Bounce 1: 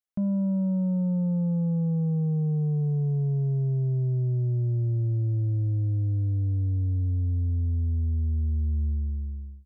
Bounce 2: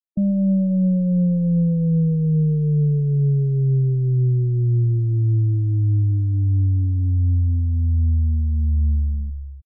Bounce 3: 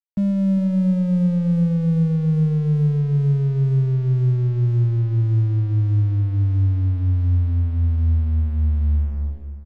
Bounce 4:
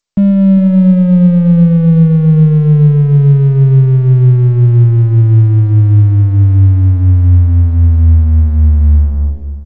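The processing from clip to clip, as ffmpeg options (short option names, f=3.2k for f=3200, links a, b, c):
-filter_complex "[0:a]aeval=exprs='0.075*(cos(1*acos(clip(val(0)/0.075,-1,1)))-cos(1*PI/2))+0.00335*(cos(6*acos(clip(val(0)/0.075,-1,1)))-cos(6*PI/2))':c=same,asplit=2[a][b];[b]adelay=134.1,volume=-16dB,highshelf=f=4k:g=-3.02[c];[a][c]amix=inputs=2:normalize=0,afftfilt=real='re*gte(hypot(re,im),0.0447)':imag='im*gte(hypot(re,im),0.0447)':win_size=1024:overlap=0.75,volume=7dB"
-af "aeval=exprs='sgn(val(0))*max(abs(val(0))-0.00891,0)':c=same,aecho=1:1:398:0.237"
-filter_complex "[0:a]asplit=2[a][b];[b]adynamicsmooth=sensitivity=4.5:basefreq=1k,volume=2dB[c];[a][c]amix=inputs=2:normalize=0,volume=4.5dB" -ar 16000 -c:a g722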